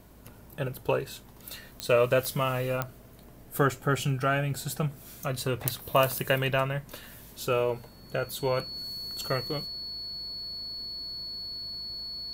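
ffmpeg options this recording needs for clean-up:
-af "adeclick=t=4,bandreject=f=53.1:t=h:w=4,bandreject=f=106.2:t=h:w=4,bandreject=f=159.3:t=h:w=4,bandreject=f=212.4:t=h:w=4,bandreject=f=265.5:t=h:w=4,bandreject=f=4.4k:w=30"

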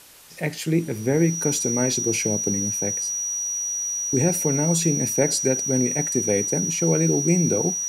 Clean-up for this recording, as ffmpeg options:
-af "bandreject=f=5.8k:w=30,afwtdn=0.0045"

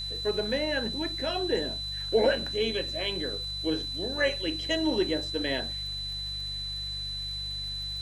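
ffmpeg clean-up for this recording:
-af "adeclick=t=4,bandreject=f=49.1:t=h:w=4,bandreject=f=98.2:t=h:w=4,bandreject=f=147.3:t=h:w=4,bandreject=f=4k:w=30,afwtdn=0.0022"

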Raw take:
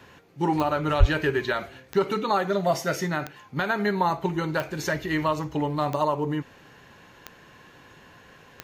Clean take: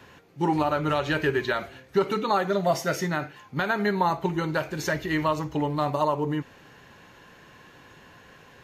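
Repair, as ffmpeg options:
-filter_complex "[0:a]adeclick=t=4,asplit=3[a][b][c];[a]afade=t=out:st=0.99:d=0.02[d];[b]highpass=f=140:w=0.5412,highpass=f=140:w=1.3066,afade=t=in:st=0.99:d=0.02,afade=t=out:st=1.11:d=0.02[e];[c]afade=t=in:st=1.11:d=0.02[f];[d][e][f]amix=inputs=3:normalize=0"

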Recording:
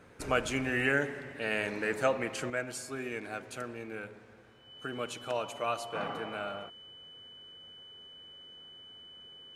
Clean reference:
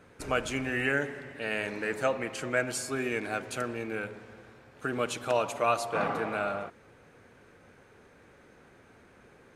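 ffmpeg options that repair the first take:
-af "bandreject=f=3k:w=30,asetnsamples=n=441:p=0,asendcmd='2.5 volume volume 6.5dB',volume=0dB"

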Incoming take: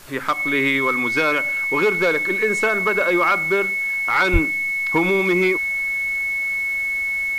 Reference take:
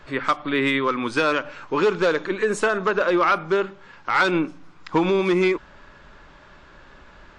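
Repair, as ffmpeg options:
-filter_complex "[0:a]bandreject=f=2.2k:w=30,asplit=3[a][b][c];[a]afade=t=out:st=4.32:d=0.02[d];[b]highpass=f=140:w=0.5412,highpass=f=140:w=1.3066,afade=t=in:st=4.32:d=0.02,afade=t=out:st=4.44:d=0.02[e];[c]afade=t=in:st=4.44:d=0.02[f];[d][e][f]amix=inputs=3:normalize=0,afwtdn=0.0056"

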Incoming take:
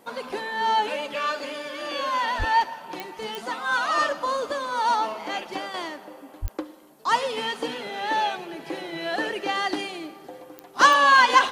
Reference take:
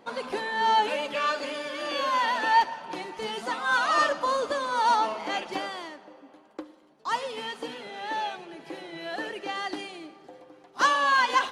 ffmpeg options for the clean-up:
-filter_complex "[0:a]adeclick=t=4,asplit=3[a][b][c];[a]afade=t=out:st=2.38:d=0.02[d];[b]highpass=f=140:w=0.5412,highpass=f=140:w=1.3066,afade=t=in:st=2.38:d=0.02,afade=t=out:st=2.5:d=0.02[e];[c]afade=t=in:st=2.5:d=0.02[f];[d][e][f]amix=inputs=3:normalize=0,asplit=3[g][h][i];[g]afade=t=out:st=6.41:d=0.02[j];[h]highpass=f=140:w=0.5412,highpass=f=140:w=1.3066,afade=t=in:st=6.41:d=0.02,afade=t=out:st=6.53:d=0.02[k];[i]afade=t=in:st=6.53:d=0.02[l];[j][k][l]amix=inputs=3:normalize=0,agate=range=-21dB:threshold=-36dB,asetnsamples=n=441:p=0,asendcmd='5.74 volume volume -6.5dB',volume=0dB"

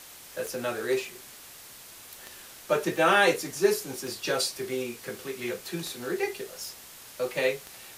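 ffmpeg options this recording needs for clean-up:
-af "adeclick=t=4,afwtdn=0.005"

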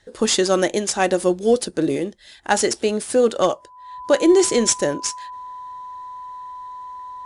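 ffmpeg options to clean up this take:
-af "bandreject=f=1k:w=30"

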